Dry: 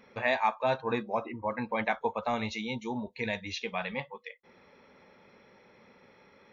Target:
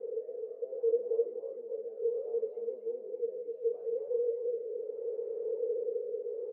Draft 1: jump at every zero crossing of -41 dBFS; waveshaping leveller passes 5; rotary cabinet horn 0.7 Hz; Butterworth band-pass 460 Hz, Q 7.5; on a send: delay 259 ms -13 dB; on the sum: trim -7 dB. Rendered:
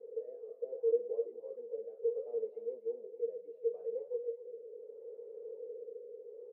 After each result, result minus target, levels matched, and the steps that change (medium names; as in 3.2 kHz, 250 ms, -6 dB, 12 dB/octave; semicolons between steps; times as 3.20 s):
jump at every zero crossing: distortion -10 dB; echo-to-direct -8 dB
change: jump at every zero crossing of -29 dBFS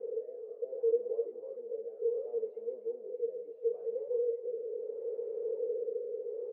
echo-to-direct -8 dB
change: delay 259 ms -5 dB